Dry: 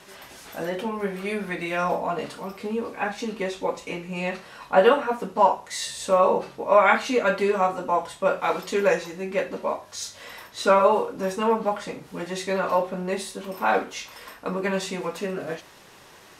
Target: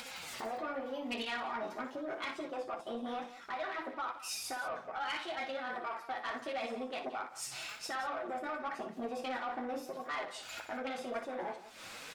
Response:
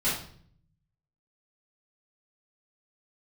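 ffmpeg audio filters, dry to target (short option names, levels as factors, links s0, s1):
-af "aemphasis=mode=reproduction:type=75fm,afwtdn=0.0251,highshelf=f=5900:g=-10.5,areverse,acompressor=threshold=0.0398:ratio=10,areverse,alimiter=level_in=2.51:limit=0.0631:level=0:latency=1:release=483,volume=0.398,acompressor=mode=upward:threshold=0.00794:ratio=2.5,flanger=delay=1.7:depth=6.4:regen=-60:speed=0.14:shape=sinusoidal,crystalizer=i=9.5:c=0,flanger=delay=5.6:depth=7.1:regen=47:speed=0.66:shape=sinusoidal,asoftclip=type=tanh:threshold=0.0106,aecho=1:1:80|235:0.316|0.2,asetrate=59535,aresample=44100,volume=2.66"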